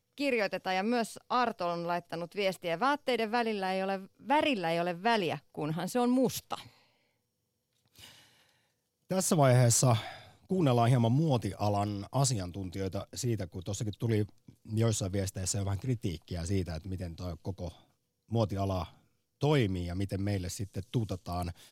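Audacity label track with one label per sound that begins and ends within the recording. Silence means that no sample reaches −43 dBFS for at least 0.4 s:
7.960000	8.080000	sound
9.110000	17.700000	sound
18.310000	18.880000	sound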